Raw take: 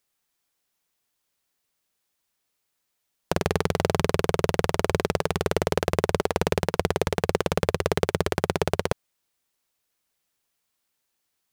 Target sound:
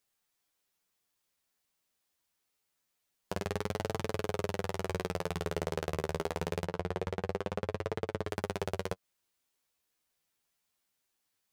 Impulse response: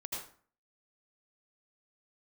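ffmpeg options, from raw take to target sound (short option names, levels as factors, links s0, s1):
-filter_complex "[0:a]alimiter=limit=0.237:level=0:latency=1:release=141,flanger=delay=8.9:depth=3.9:regen=20:speed=0.25:shape=triangular,asettb=1/sr,asplit=3[s0][s1][s2];[s0]atrim=end=6.664[s3];[s1]atrim=start=6.66:end=8.28,asetpts=PTS-STARTPTS,afade=t=in:d=0.004:c=qsin,afade=t=out:st=1.616:d=0.004:c=qsin,lowpass=f=2500:p=1[s4];[s2]atrim=start=8.276[s5];[s3][s4]acrossfade=d=0.004:c1=hsin:c2=qsin[s6];[s6][s5]acrossfade=d=0.004:c1=qsin:c2=hsin"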